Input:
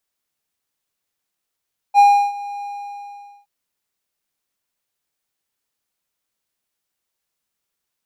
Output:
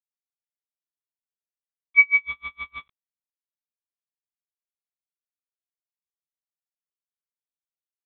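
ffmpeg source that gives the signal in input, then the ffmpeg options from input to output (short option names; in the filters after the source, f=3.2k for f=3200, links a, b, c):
-f lavfi -i "aevalsrc='0.631*(1-4*abs(mod(812*t+0.25,1)-0.5))':d=1.519:s=44100,afade=t=in:d=0.047,afade=t=out:st=0.047:d=0.334:silence=0.1,afade=t=out:st=0.69:d=0.829"
-af "afftfilt=real='real(if(lt(b,272),68*(eq(floor(b/68),0)*2+eq(floor(b/68),1)*0+eq(floor(b/68),2)*3+eq(floor(b/68),3)*1)+mod(b,68),b),0)':imag='imag(if(lt(b,272),68*(eq(floor(b/68),0)*2+eq(floor(b/68),1)*0+eq(floor(b/68),2)*3+eq(floor(b/68),3)*1)+mod(b,68),b),0)':win_size=2048:overlap=0.75,aresample=8000,aeval=exprs='val(0)*gte(abs(val(0)),0.0355)':c=same,aresample=44100,aeval=exprs='val(0)*pow(10,-38*(0.5-0.5*cos(2*PI*6.4*n/s))/20)':c=same"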